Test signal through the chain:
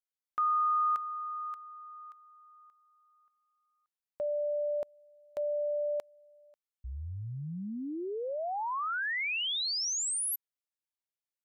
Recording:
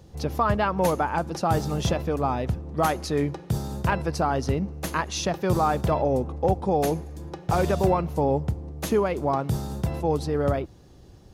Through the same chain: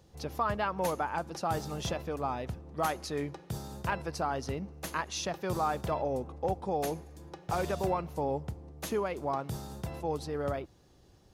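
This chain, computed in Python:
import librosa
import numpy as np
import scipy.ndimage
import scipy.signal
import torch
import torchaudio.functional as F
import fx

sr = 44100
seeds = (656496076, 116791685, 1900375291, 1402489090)

y = fx.low_shelf(x, sr, hz=430.0, db=-6.5)
y = F.gain(torch.from_numpy(y), -6.0).numpy()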